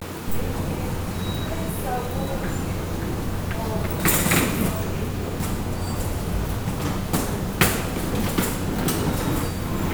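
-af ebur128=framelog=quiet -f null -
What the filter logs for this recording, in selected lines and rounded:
Integrated loudness:
  I:         -24.9 LUFS
  Threshold: -34.9 LUFS
Loudness range:
  LRA:         3.8 LU
  Threshold: -44.6 LUFS
  LRA low:   -27.5 LUFS
  LRA high:  -23.7 LUFS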